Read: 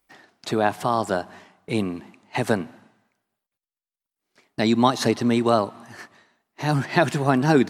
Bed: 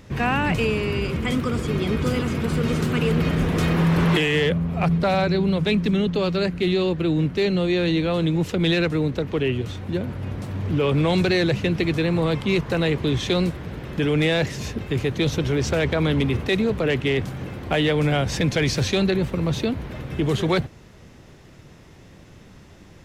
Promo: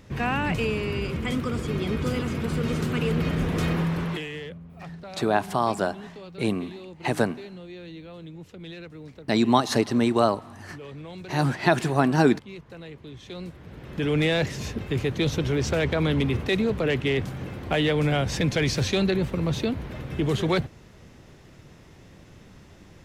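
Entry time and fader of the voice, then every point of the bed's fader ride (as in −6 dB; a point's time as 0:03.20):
4.70 s, −1.5 dB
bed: 0:03.71 −4 dB
0:04.62 −20 dB
0:13.17 −20 dB
0:14.13 −2.5 dB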